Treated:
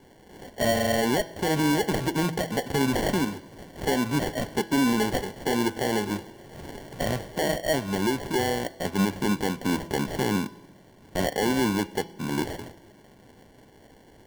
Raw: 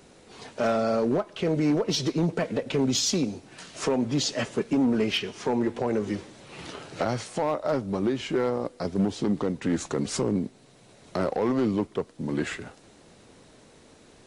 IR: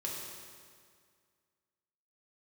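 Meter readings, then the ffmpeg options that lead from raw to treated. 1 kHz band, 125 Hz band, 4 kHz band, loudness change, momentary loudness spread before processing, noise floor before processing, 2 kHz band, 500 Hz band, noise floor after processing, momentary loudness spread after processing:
+4.0 dB, +1.0 dB, 0.0 dB, +0.5 dB, 11 LU, −55 dBFS, +6.0 dB, −0.5 dB, −54 dBFS, 11 LU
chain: -filter_complex "[0:a]acrusher=samples=35:mix=1:aa=0.000001,bandreject=frequency=166.4:width_type=h:width=4,bandreject=frequency=332.8:width_type=h:width=4,bandreject=frequency=499.2:width_type=h:width=4,bandreject=frequency=665.6:width_type=h:width=4,bandreject=frequency=832:width_type=h:width=4,bandreject=frequency=998.4:width_type=h:width=4,bandreject=frequency=1164.8:width_type=h:width=4,bandreject=frequency=1331.2:width_type=h:width=4,bandreject=frequency=1497.6:width_type=h:width=4,bandreject=frequency=1664:width_type=h:width=4,bandreject=frequency=1830.4:width_type=h:width=4,bandreject=frequency=1996.8:width_type=h:width=4,bandreject=frequency=2163.2:width_type=h:width=4,bandreject=frequency=2329.6:width_type=h:width=4,bandreject=frequency=2496:width_type=h:width=4,bandreject=frequency=2662.4:width_type=h:width=4,bandreject=frequency=2828.8:width_type=h:width=4,bandreject=frequency=2995.2:width_type=h:width=4,bandreject=frequency=3161.6:width_type=h:width=4,bandreject=frequency=3328:width_type=h:width=4,bandreject=frequency=3494.4:width_type=h:width=4,bandreject=frequency=3660.8:width_type=h:width=4,bandreject=frequency=3827.2:width_type=h:width=4,bandreject=frequency=3993.6:width_type=h:width=4,bandreject=frequency=4160:width_type=h:width=4,bandreject=frequency=4326.4:width_type=h:width=4,bandreject=frequency=4492.8:width_type=h:width=4,bandreject=frequency=4659.2:width_type=h:width=4,bandreject=frequency=4825.6:width_type=h:width=4,bandreject=frequency=4992:width_type=h:width=4,bandreject=frequency=5158.4:width_type=h:width=4,bandreject=frequency=5324.8:width_type=h:width=4,bandreject=frequency=5491.2:width_type=h:width=4,bandreject=frequency=5657.6:width_type=h:width=4,asplit=2[link_01][link_02];[1:a]atrim=start_sample=2205[link_03];[link_02][link_03]afir=irnorm=-1:irlink=0,volume=-20.5dB[link_04];[link_01][link_04]amix=inputs=2:normalize=0"

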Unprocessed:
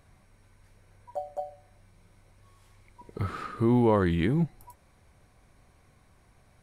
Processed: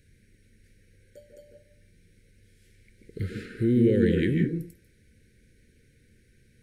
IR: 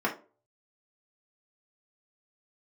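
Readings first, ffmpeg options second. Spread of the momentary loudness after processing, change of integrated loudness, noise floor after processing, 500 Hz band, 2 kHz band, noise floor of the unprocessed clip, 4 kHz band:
15 LU, +2.5 dB, −62 dBFS, +1.5 dB, +1.0 dB, −62 dBFS, +0.5 dB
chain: -filter_complex "[0:a]asuperstop=centerf=900:order=12:qfactor=0.86,asplit=2[link_01][link_02];[1:a]atrim=start_sample=2205,adelay=144[link_03];[link_02][link_03]afir=irnorm=-1:irlink=0,volume=-13dB[link_04];[link_01][link_04]amix=inputs=2:normalize=0"

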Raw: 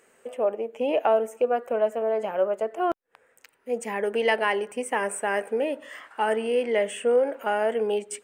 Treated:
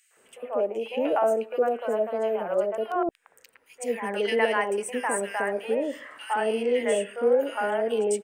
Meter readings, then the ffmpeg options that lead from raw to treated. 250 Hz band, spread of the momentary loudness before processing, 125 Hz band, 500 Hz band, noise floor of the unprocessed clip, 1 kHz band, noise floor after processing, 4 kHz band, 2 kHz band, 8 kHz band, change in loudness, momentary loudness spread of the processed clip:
+1.0 dB, 7 LU, can't be measured, −0.5 dB, −66 dBFS, −1.0 dB, −65 dBFS, −0.5 dB, −1.0 dB, +1.5 dB, −0.5 dB, 7 LU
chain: -filter_complex "[0:a]acrossover=split=680|2200[link_01][link_02][link_03];[link_02]adelay=110[link_04];[link_01]adelay=170[link_05];[link_05][link_04][link_03]amix=inputs=3:normalize=0,volume=1.5dB"

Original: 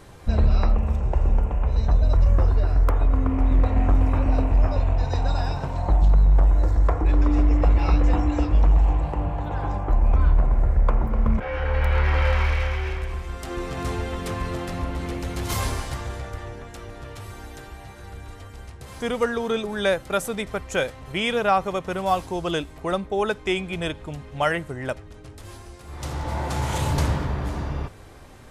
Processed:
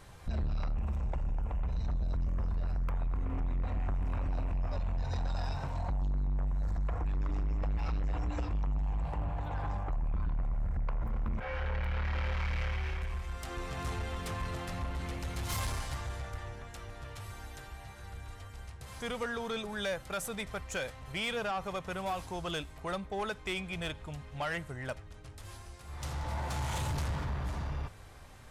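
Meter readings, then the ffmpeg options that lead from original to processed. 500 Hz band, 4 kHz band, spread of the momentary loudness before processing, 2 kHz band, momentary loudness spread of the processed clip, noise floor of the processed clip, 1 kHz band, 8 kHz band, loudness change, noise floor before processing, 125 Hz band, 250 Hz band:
−13.5 dB, −8.0 dB, 18 LU, −9.5 dB, 11 LU, −50 dBFS, −11.5 dB, −7.0 dB, −13.0 dB, −43 dBFS, −12.0 dB, −13.5 dB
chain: -af "equalizer=frequency=330:width=0.93:gain=-8,alimiter=limit=-16dB:level=0:latency=1:release=86,asoftclip=type=tanh:threshold=-23.5dB,volume=-5dB"

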